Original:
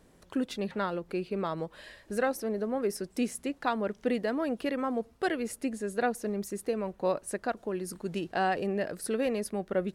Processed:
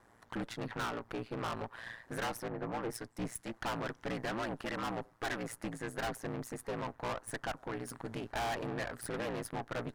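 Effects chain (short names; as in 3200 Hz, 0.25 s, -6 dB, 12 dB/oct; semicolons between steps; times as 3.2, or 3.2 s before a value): band shelf 1200 Hz +11 dB; ring modulator 58 Hz; tube stage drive 34 dB, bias 0.75; 2.48–3.54 three-band expander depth 100%; gain +1 dB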